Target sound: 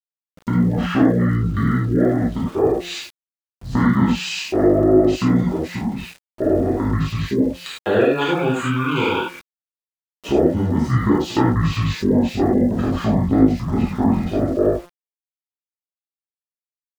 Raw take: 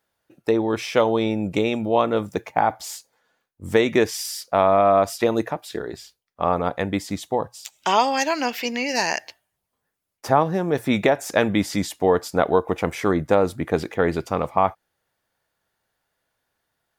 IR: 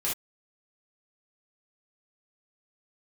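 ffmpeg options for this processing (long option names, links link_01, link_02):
-filter_complex "[0:a]bandreject=frequency=330.1:width_type=h:width=4,bandreject=frequency=660.2:width_type=h:width=4,bandreject=frequency=990.3:width_type=h:width=4,bandreject=frequency=1320.4:width_type=h:width=4,bandreject=frequency=1650.5:width_type=h:width=4,asetrate=23361,aresample=44100,atempo=1.88775[link_01];[1:a]atrim=start_sample=2205,asetrate=30429,aresample=44100[link_02];[link_01][link_02]afir=irnorm=-1:irlink=0,asplit=2[link_03][link_04];[link_04]acompressor=threshold=-19dB:ratio=6,volume=2.5dB[link_05];[link_03][link_05]amix=inputs=2:normalize=0,highshelf=frequency=9600:gain=-7,aeval=exprs='val(0)*gte(abs(val(0)),0.0316)':channel_layout=same,volume=-9dB"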